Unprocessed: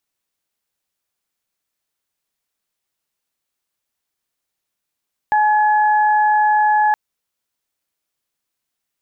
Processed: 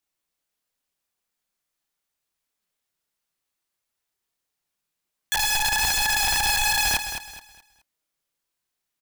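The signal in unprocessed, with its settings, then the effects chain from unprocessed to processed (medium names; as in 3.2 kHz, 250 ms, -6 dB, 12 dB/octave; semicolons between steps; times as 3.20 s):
steady additive tone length 1.62 s, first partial 848 Hz, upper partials -8.5 dB, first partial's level -12 dB
chorus voices 6, 0.79 Hz, delay 29 ms, depth 3.9 ms; integer overflow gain 18 dB; on a send: feedback delay 212 ms, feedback 31%, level -9 dB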